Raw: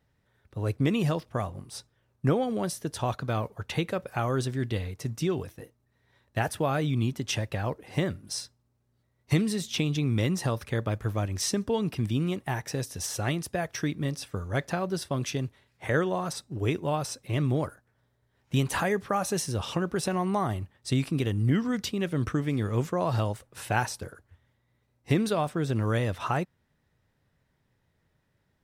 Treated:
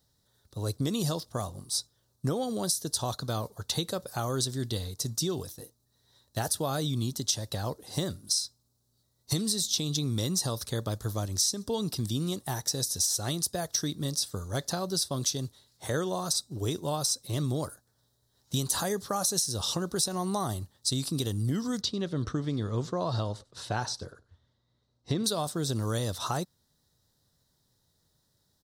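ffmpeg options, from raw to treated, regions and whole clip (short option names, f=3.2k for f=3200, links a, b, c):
-filter_complex "[0:a]asettb=1/sr,asplit=3[a][b][c];[a]atrim=end=21.814[d];[b]atrim=start=21.81:end=25.24,asetpts=PTS-STARTPTS,afade=t=in:d=0.004:c=qsin,afade=t=out:st=3.426:d=0.004:c=qsin,lowpass=3.5k,bandreject=f=820:w=20,aecho=1:1:96:0.075,atrim=end_sample=151263[e];[c]atrim=start=25.236[f];[d][e]acrossfade=d=0.004:c1=hsin:c2=qsin[g];[g][f]acrossfade=d=0.004:c1=qsin:c2=hsin,firequalizer=gain_entry='entry(1200,0);entry(2400,-11);entry(3900,15)':delay=0.05:min_phase=1,acompressor=threshold=-22dB:ratio=6,volume=-2.5dB"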